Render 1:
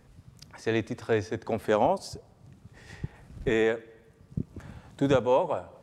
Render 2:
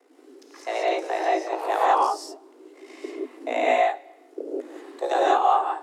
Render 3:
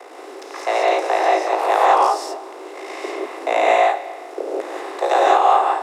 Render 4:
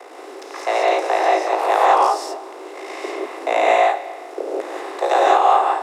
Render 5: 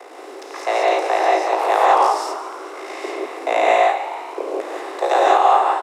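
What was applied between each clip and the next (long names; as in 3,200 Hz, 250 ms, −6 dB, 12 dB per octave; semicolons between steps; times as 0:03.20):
ring modulation 28 Hz; reverb whose tail is shaped and stops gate 210 ms rising, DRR −6 dB; frequency shifter +250 Hz
compressor on every frequency bin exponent 0.6; high-pass filter 360 Hz 24 dB per octave; level +3.5 dB
no processing that can be heard
echo with shifted repeats 145 ms, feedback 64%, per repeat +73 Hz, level −14.5 dB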